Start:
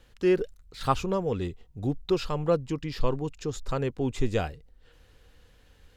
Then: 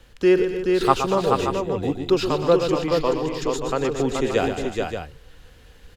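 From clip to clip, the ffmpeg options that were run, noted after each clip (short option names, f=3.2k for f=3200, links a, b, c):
-filter_complex "[0:a]aecho=1:1:122|228|279|428|578:0.376|0.188|0.2|0.596|0.355,acrossover=split=240|770[a][b][c];[a]acompressor=threshold=-38dB:ratio=6[d];[d][b][c]amix=inputs=3:normalize=0,volume=7dB"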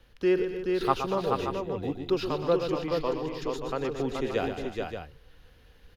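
-af "equalizer=f=7.7k:t=o:w=0.39:g=-13,volume=-7.5dB"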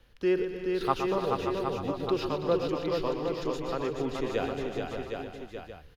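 -af "aecho=1:1:327|762:0.211|0.501,volume=-2dB"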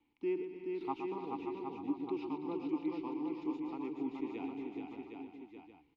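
-filter_complex "[0:a]asplit=3[a][b][c];[a]bandpass=f=300:t=q:w=8,volume=0dB[d];[b]bandpass=f=870:t=q:w=8,volume=-6dB[e];[c]bandpass=f=2.24k:t=q:w=8,volume=-9dB[f];[d][e][f]amix=inputs=3:normalize=0,volume=2.5dB"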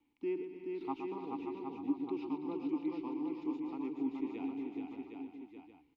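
-af "equalizer=f=270:w=4.7:g=5.5,volume=-2dB"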